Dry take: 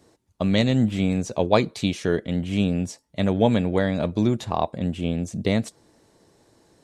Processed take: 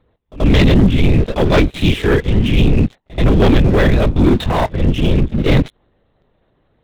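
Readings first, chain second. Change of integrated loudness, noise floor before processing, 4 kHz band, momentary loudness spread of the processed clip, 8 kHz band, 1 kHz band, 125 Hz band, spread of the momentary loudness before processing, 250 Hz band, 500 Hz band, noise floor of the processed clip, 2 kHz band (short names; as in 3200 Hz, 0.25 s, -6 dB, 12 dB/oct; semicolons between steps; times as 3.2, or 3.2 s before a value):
+9.0 dB, -63 dBFS, +8.5 dB, 6 LU, n/a, +6.0 dB, +11.5 dB, 7 LU, +7.5 dB, +7.0 dB, -62 dBFS, +10.5 dB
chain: transient shaper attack -6 dB, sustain 0 dB; LPC vocoder at 8 kHz whisper; sample leveller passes 3; dynamic EQ 740 Hz, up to -5 dB, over -32 dBFS, Q 0.91; pre-echo 82 ms -20 dB; gain +5 dB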